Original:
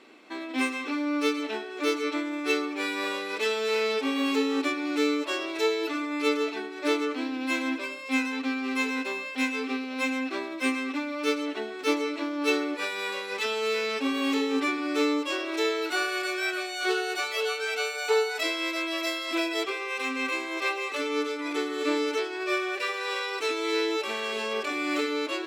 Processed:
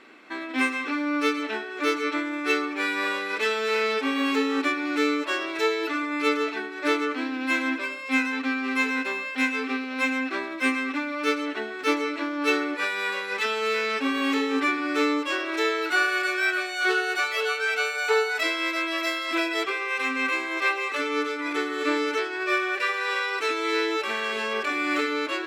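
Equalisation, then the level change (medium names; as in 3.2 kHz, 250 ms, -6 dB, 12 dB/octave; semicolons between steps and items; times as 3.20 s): bass shelf 120 Hz +12 dB; peaking EQ 1.6 kHz +9 dB 1.2 oct; -1.0 dB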